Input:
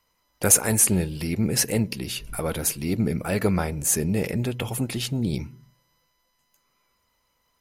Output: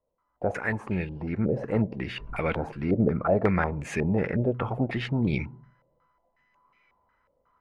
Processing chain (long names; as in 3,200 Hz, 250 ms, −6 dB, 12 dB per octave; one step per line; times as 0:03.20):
speech leveller 2 s
low-pass on a step sequencer 5.5 Hz 570–2,300 Hz
level −3.5 dB